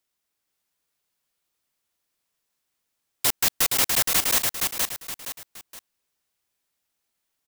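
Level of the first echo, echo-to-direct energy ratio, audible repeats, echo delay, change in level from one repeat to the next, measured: −3.5 dB, −3.0 dB, 3, 469 ms, −9.0 dB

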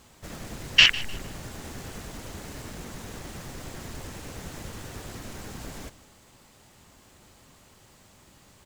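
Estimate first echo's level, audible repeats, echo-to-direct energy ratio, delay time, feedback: −18.0 dB, 2, −17.5 dB, 151 ms, 30%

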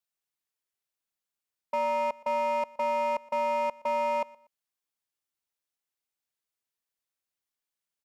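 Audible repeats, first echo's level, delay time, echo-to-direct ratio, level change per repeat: 2, −22.5 dB, 120 ms, −22.0 dB, −11.0 dB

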